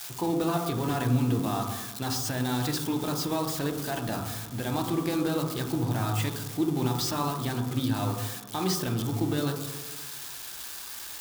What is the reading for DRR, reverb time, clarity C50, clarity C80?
2.5 dB, 1.2 s, 5.5 dB, 7.5 dB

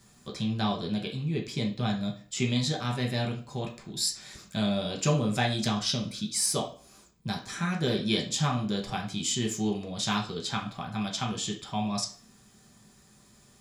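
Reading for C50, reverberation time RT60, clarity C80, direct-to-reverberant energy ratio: 9.5 dB, 0.40 s, 15.0 dB, 0.0 dB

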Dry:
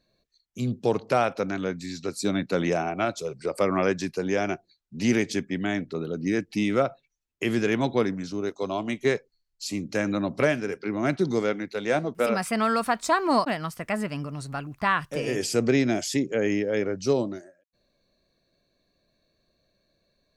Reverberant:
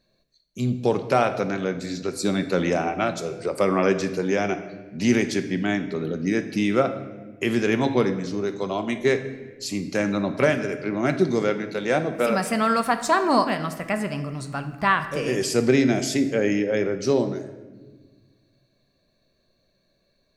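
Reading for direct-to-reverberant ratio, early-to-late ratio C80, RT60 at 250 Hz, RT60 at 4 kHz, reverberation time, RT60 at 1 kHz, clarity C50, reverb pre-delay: 8.0 dB, 13.0 dB, 2.2 s, 0.95 s, 1.3 s, 1.1 s, 11.0 dB, 5 ms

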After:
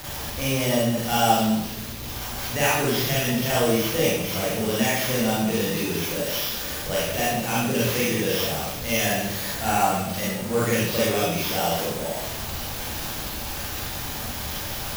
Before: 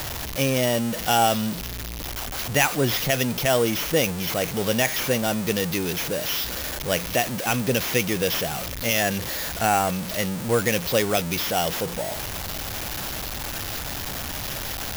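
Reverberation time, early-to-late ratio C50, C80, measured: 0.80 s, -2.5 dB, 2.5 dB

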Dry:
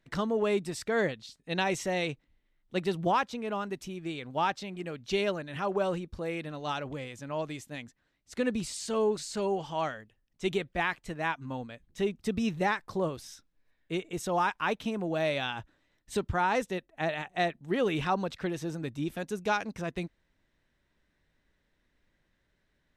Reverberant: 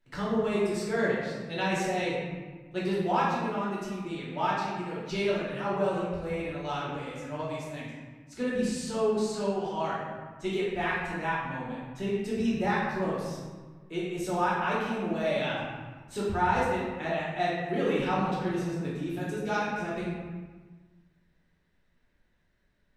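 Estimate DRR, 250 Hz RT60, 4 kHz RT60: -7.5 dB, 1.7 s, 0.90 s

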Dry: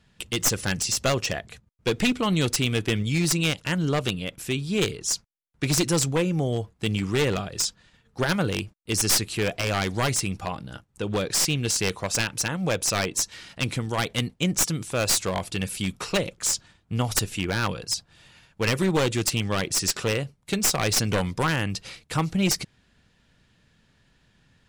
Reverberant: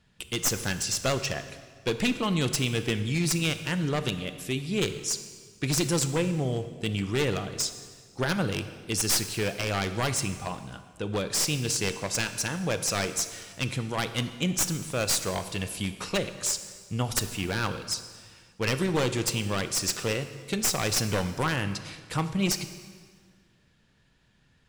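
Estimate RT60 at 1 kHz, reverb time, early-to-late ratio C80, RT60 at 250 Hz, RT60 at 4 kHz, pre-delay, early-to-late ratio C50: 1.7 s, 1.7 s, 12.5 dB, 1.8 s, 1.5 s, 23 ms, 11.0 dB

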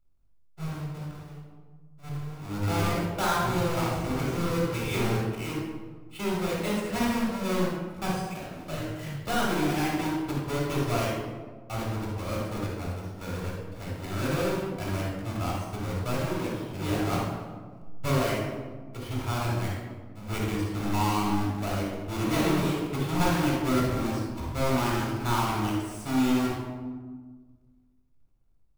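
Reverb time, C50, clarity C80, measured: 1.5 s, -1.0 dB, 2.5 dB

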